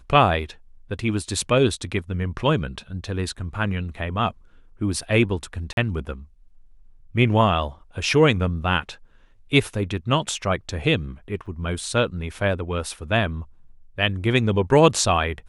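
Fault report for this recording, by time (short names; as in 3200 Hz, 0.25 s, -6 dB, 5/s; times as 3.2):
5.73–5.77 gap 42 ms
11.46 gap 4.5 ms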